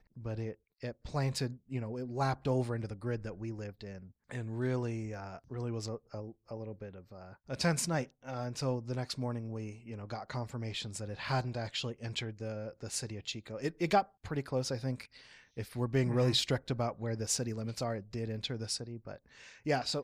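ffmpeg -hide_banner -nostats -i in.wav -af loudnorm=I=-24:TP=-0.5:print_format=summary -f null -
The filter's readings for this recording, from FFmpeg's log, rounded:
Input Integrated:    -36.3 LUFS
Input True Peak:     -15.5 dBTP
Input LRA:             5.0 LU
Input Threshold:     -46.7 LUFS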